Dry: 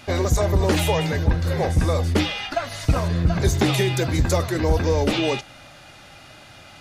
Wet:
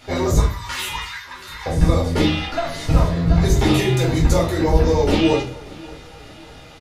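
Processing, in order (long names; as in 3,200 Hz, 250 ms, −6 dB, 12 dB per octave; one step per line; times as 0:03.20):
0:00.39–0:01.66: elliptic high-pass filter 1,000 Hz, stop band 40 dB
repeating echo 584 ms, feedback 48%, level −21.5 dB
rectangular room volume 270 cubic metres, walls furnished, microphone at 4.3 metres
level −6 dB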